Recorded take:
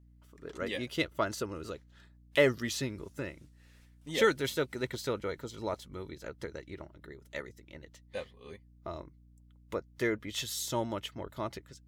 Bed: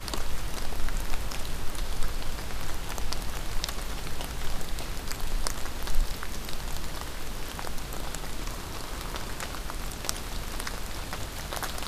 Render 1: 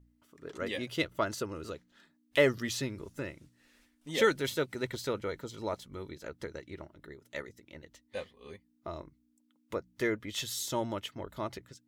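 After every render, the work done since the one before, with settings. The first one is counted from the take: de-hum 60 Hz, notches 3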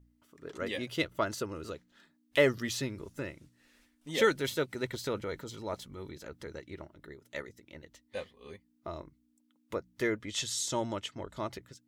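5.06–6.56 s: transient shaper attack -6 dB, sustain +3 dB; 10.22–11.51 s: resonant low-pass 7.8 kHz, resonance Q 1.6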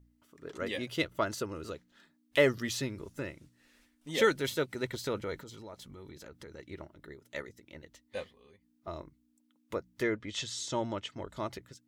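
5.40–6.59 s: compression 3:1, threshold -45 dBFS; 8.33–8.87 s: compression 4:1, threshold -58 dBFS; 10.03–11.10 s: distance through air 73 m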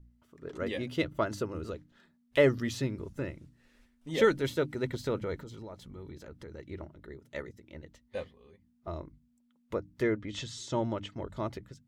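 tilt EQ -2 dB/octave; hum notches 50/100/150/200/250/300 Hz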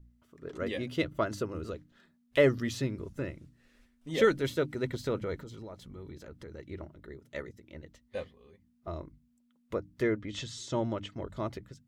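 band-stop 890 Hz, Q 13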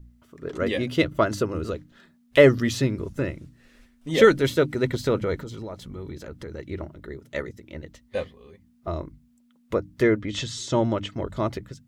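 trim +9 dB

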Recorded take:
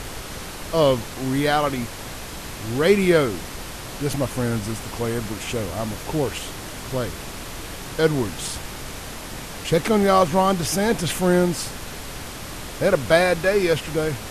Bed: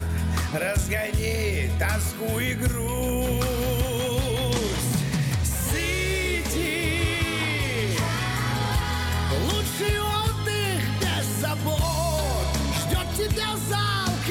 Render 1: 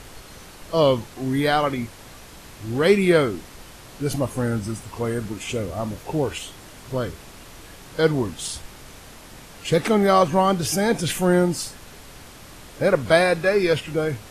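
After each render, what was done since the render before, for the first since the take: noise print and reduce 9 dB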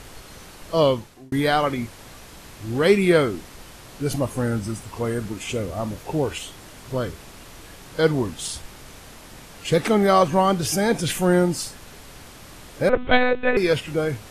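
0.82–1.32 s: fade out; 12.89–13.57 s: monotone LPC vocoder at 8 kHz 250 Hz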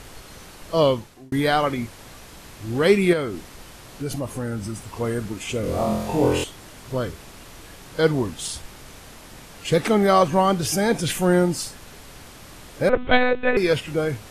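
3.13–4.87 s: compression 2:1, threshold -26 dBFS; 5.61–6.44 s: flutter echo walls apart 4 m, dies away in 0.83 s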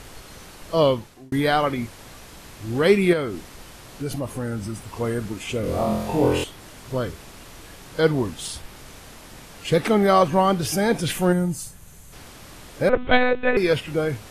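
dynamic bell 7 kHz, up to -4 dB, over -45 dBFS, Q 1.4; 11.33–12.13 s: time-frequency box 200–5900 Hz -10 dB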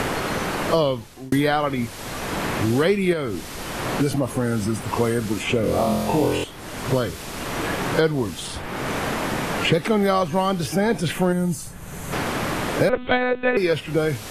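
three bands compressed up and down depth 100%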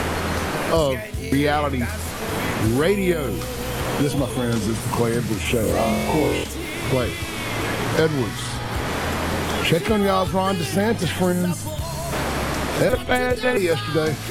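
add bed -4.5 dB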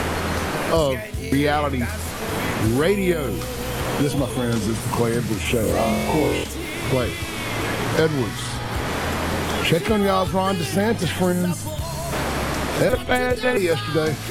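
no audible change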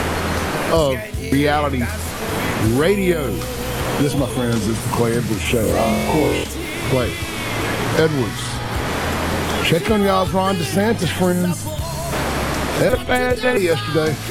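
trim +3 dB; peak limiter -3 dBFS, peak gain reduction 1.5 dB

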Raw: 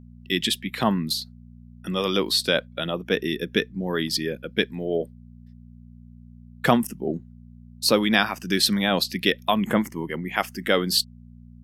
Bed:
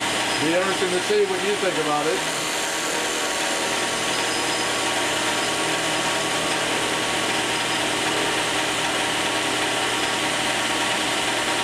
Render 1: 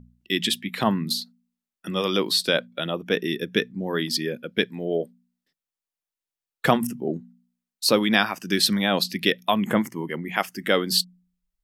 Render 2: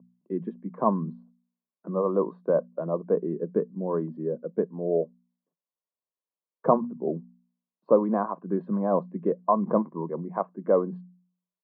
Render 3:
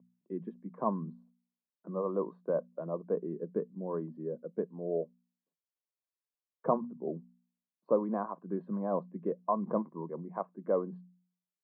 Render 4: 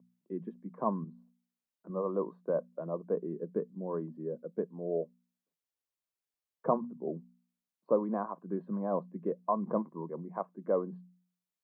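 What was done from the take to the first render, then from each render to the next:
de-hum 60 Hz, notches 4
Chebyshev band-pass 160–1100 Hz, order 4; comb 1.9 ms, depth 39%
trim -8 dB
1.04–1.90 s: compression 1.5:1, threshold -51 dBFS

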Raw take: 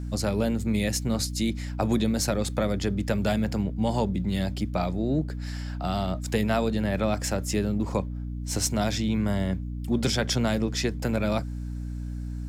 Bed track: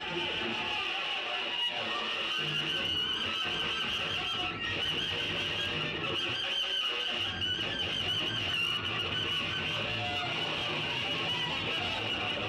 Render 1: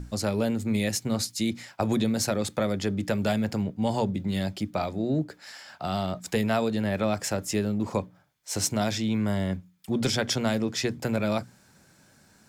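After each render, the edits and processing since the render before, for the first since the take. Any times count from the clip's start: hum notches 60/120/180/240/300 Hz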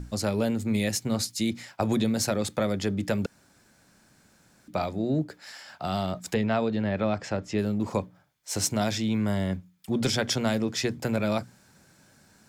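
3.26–4.68 s: room tone; 6.34–7.59 s: distance through air 160 m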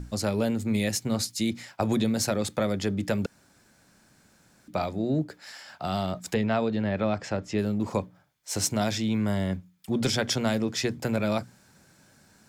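no audible change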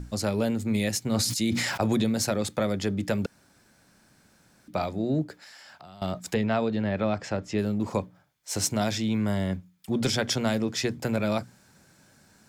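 1.04–2.04 s: decay stretcher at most 24 dB/s; 3.23–4.76 s: band-stop 7.1 kHz; 5.43–6.02 s: compression, threshold -45 dBFS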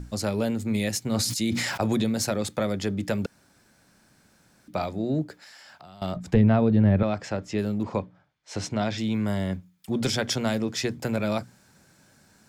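6.16–7.03 s: RIAA curve playback; 7.83–8.98 s: low-pass 3.9 kHz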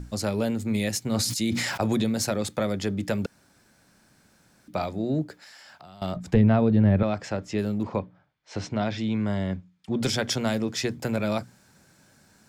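7.87–10.01 s: distance through air 96 m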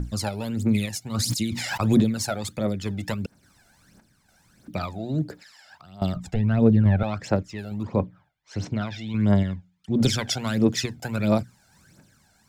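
phaser 1.5 Hz, delay 1.5 ms, feedback 69%; random-step tremolo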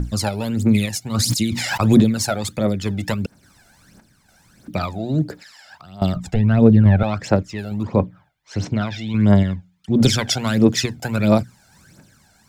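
trim +6 dB; peak limiter -1 dBFS, peak gain reduction 1 dB

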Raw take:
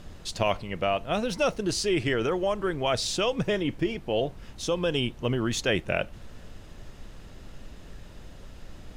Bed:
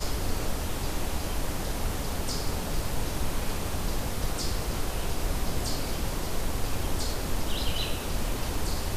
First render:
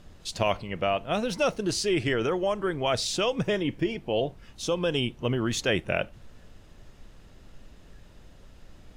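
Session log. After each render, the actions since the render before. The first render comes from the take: noise print and reduce 6 dB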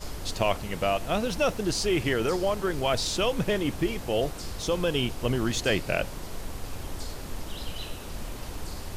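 add bed -7 dB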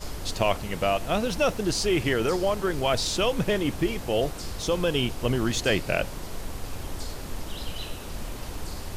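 trim +1.5 dB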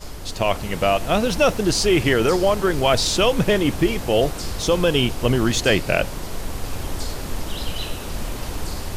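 level rider gain up to 7 dB

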